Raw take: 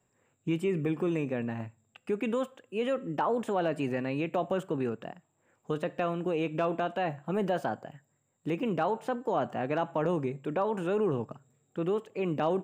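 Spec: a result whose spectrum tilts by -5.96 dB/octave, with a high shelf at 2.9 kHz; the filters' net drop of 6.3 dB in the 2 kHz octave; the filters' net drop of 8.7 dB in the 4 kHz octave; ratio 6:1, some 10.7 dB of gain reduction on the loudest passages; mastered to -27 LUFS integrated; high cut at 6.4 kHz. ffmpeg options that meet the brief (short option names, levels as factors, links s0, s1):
-af "lowpass=6400,equalizer=f=2000:t=o:g=-4.5,highshelf=f=2900:g=-8,equalizer=f=4000:t=o:g=-4,acompressor=threshold=0.0141:ratio=6,volume=5.62"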